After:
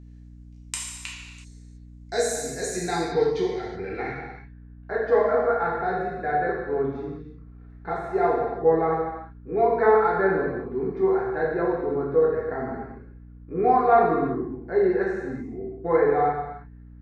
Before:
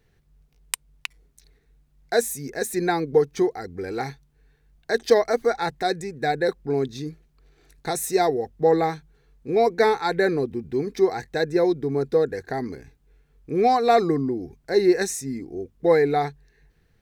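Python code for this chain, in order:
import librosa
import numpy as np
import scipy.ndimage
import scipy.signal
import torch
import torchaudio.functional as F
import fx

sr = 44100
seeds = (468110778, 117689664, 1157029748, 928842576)

y = fx.filter_sweep_lowpass(x, sr, from_hz=7000.0, to_hz=1300.0, start_s=2.67, end_s=4.66, q=2.5)
y = fx.rev_gated(y, sr, seeds[0], gate_ms=400, shape='falling', drr_db=-5.5)
y = fx.add_hum(y, sr, base_hz=60, snr_db=20)
y = y * 10.0 ** (-9.0 / 20.0)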